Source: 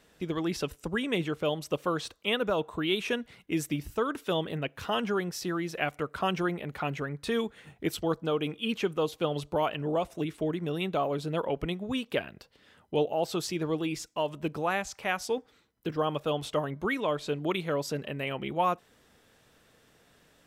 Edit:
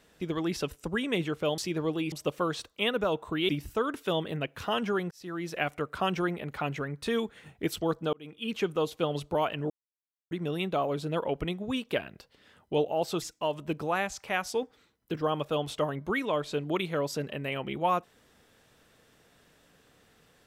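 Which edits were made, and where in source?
2.95–3.70 s: delete
5.32–5.72 s: fade in
8.34–8.84 s: fade in
9.91–10.52 s: mute
13.43–13.97 s: move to 1.58 s

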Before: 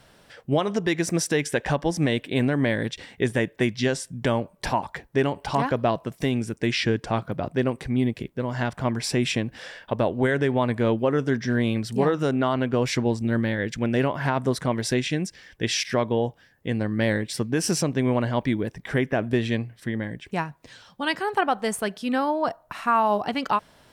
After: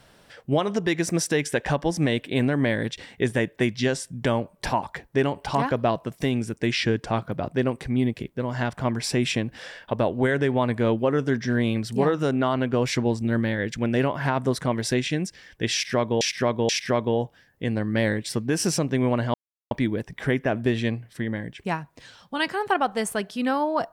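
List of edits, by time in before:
15.73–16.21 s: loop, 3 plays
18.38 s: insert silence 0.37 s

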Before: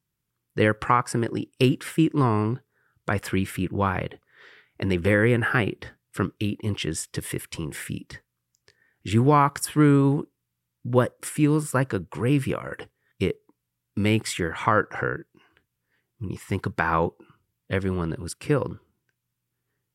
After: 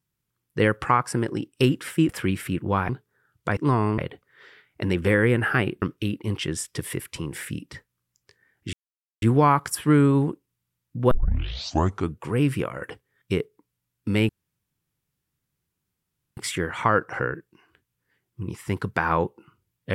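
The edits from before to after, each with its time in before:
2.09–2.50 s: swap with 3.18–3.98 s
5.82–6.21 s: delete
9.12 s: insert silence 0.49 s
11.01 s: tape start 1.09 s
14.19 s: insert room tone 2.08 s

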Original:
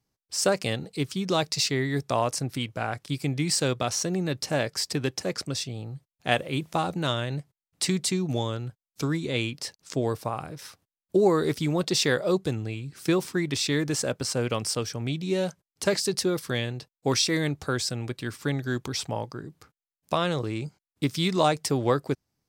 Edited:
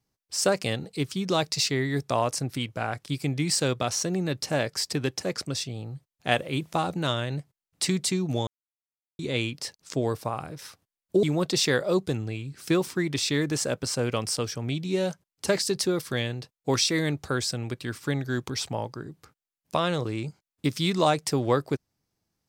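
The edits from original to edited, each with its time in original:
8.47–9.19 s: mute
11.23–11.61 s: delete

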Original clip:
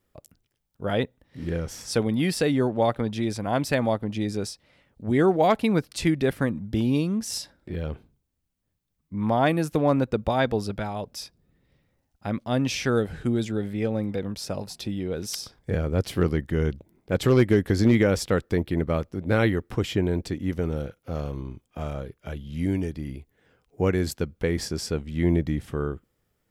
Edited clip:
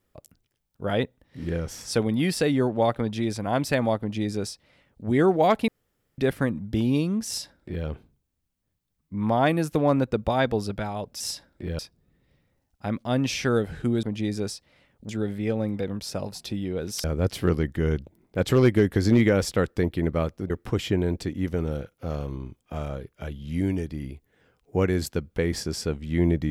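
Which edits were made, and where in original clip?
4.00–5.06 s: copy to 13.44 s
5.68–6.18 s: room tone
7.27–7.86 s: copy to 11.20 s
15.39–15.78 s: delete
19.24–19.55 s: delete

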